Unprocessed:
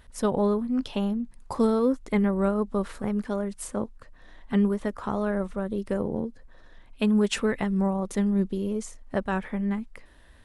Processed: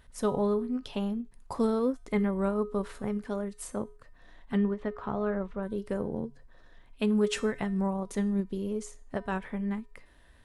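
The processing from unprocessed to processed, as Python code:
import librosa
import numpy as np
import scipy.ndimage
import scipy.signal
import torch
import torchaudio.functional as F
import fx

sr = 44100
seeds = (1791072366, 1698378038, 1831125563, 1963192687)

y = fx.comb_fb(x, sr, f0_hz=140.0, decay_s=0.43, harmonics='odd', damping=0.0, mix_pct=60)
y = fx.lowpass(y, sr, hz=3300.0, slope=12, at=(4.57, 5.63))
y = fx.end_taper(y, sr, db_per_s=300.0)
y = y * librosa.db_to_amplitude(3.0)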